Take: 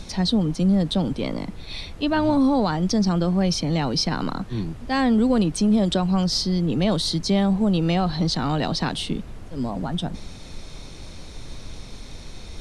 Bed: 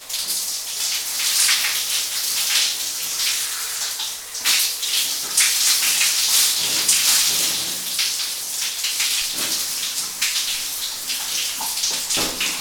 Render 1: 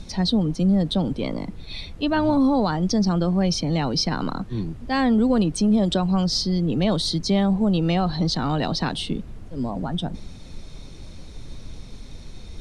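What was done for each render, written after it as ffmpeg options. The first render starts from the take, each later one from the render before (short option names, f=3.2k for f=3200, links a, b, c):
-af "afftdn=nr=6:nf=-39"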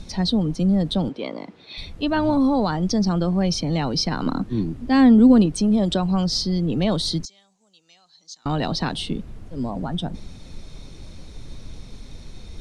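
-filter_complex "[0:a]asettb=1/sr,asplit=3[a][b][c];[a]atrim=end=1.094[d];[b]atrim=start=1.09:end=1.78,asetpts=PTS-STARTPTS,afade=t=in:d=0.004:c=qsin,afade=t=out:st=0.686:d=0.004:c=qsin,highpass=320,lowpass=4.8k[e];[c]atrim=start=1.776[f];[d][e]acrossfade=d=0.004:c1=hsin:c2=qsin[g];[g][f]acrossfade=d=0.004:c1=qsin:c2=hsin,asettb=1/sr,asplit=3[h][i][j];[h]atrim=end=4.264[k];[i]atrim=start=4.26:end=5.46,asetpts=PTS-STARTPTS,afade=t=in:d=0.004:c=qsin,afade=t=out:st=1.196:d=0.004:c=qsin,equalizer=f=270:t=o:w=0.77:g=9[l];[j]atrim=start=5.456[m];[k][l]acrossfade=d=0.004:c1=hsin:c2=qsin[n];[n][m]acrossfade=d=0.004:c1=qsin:c2=hsin,asettb=1/sr,asplit=3[o][p][q];[o]atrim=end=7.254[r];[p]atrim=start=7.25:end=8.46,asetpts=PTS-STARTPTS,afade=t=in:d=0.004:c=qsin,afade=t=out:st=1.206:d=0.004:c=qsin,bandpass=f=6.7k:t=q:w=6.4[s];[q]atrim=start=8.456[t];[r][s]acrossfade=d=0.004:c1=hsin:c2=qsin[u];[u][t]acrossfade=d=0.004:c1=qsin:c2=hsin"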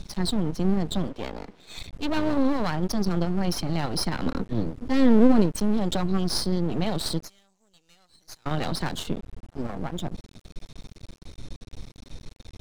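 -af "aeval=exprs='max(val(0),0)':c=same"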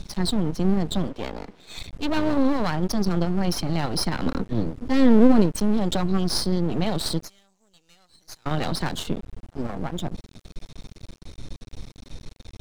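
-af "volume=2dB"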